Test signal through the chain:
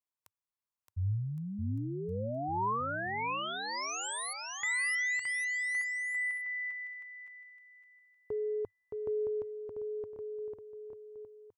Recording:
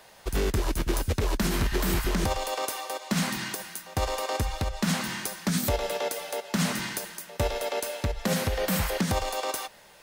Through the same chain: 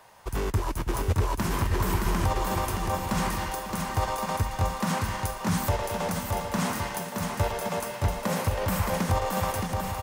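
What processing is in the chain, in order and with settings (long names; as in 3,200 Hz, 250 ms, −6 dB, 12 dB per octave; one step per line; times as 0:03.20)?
graphic EQ with 15 bands 100 Hz +10 dB, 1,000 Hz +9 dB, 4,000 Hz −4 dB
on a send: bouncing-ball delay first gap 620 ms, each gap 0.8×, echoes 5
on the sum: level −4 dB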